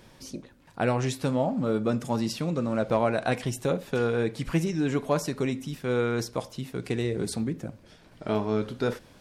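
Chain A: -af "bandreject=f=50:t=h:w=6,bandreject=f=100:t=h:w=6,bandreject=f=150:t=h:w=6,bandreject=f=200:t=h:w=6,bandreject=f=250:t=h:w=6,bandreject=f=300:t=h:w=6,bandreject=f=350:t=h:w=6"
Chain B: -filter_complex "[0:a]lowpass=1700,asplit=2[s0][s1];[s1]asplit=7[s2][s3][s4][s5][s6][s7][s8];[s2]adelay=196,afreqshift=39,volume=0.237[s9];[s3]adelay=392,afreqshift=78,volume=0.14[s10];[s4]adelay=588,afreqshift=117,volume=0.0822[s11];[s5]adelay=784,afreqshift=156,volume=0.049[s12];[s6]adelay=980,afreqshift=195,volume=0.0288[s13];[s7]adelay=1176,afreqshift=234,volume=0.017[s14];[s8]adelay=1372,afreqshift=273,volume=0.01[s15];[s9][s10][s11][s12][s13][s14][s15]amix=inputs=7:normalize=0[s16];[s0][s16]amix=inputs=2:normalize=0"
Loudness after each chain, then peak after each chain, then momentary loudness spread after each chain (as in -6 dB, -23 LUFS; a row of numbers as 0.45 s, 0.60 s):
-28.5 LUFS, -28.5 LUFS; -12.5 dBFS, -11.5 dBFS; 10 LU, 11 LU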